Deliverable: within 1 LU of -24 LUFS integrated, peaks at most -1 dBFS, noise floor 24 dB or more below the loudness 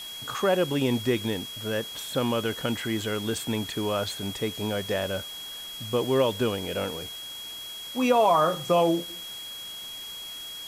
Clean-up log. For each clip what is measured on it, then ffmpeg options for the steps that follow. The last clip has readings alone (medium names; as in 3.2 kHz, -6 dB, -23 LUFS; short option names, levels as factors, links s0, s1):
steady tone 3.3 kHz; tone level -37 dBFS; noise floor -39 dBFS; noise floor target -52 dBFS; loudness -27.5 LUFS; peak level -10.5 dBFS; loudness target -24.0 LUFS
-> -af "bandreject=f=3300:w=30"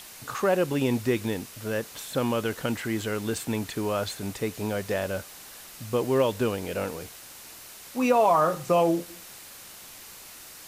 steady tone not found; noise floor -46 dBFS; noise floor target -51 dBFS
-> -af "afftdn=nr=6:nf=-46"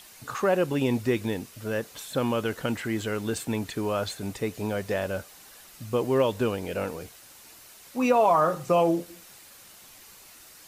noise floor -51 dBFS; loudness -27.0 LUFS; peak level -10.0 dBFS; loudness target -24.0 LUFS
-> -af "volume=1.41"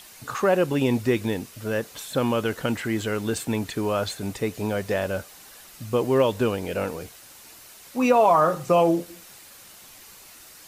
loudness -24.0 LUFS; peak level -7.5 dBFS; noise floor -48 dBFS